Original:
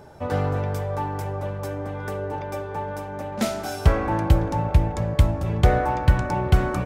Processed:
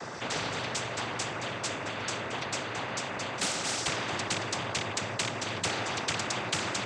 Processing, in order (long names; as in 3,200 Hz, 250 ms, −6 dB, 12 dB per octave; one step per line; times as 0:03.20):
loose part that buzzes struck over −17 dBFS, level −16 dBFS
cochlear-implant simulation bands 16
every bin compressed towards the loudest bin 4 to 1
level −8 dB